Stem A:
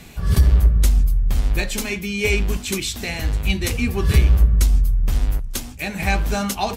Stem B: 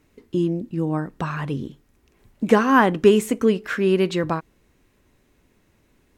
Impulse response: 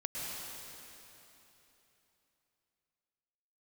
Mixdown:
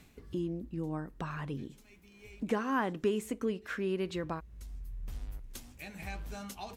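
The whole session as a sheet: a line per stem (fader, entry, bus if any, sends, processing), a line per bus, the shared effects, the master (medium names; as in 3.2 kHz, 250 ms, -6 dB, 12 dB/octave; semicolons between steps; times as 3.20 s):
-16.0 dB, 0.00 s, no send, auto duck -18 dB, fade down 0.30 s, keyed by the second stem
-5.0 dB, 0.00 s, no send, none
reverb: none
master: compression 1.5:1, threshold -47 dBFS, peak gain reduction 12 dB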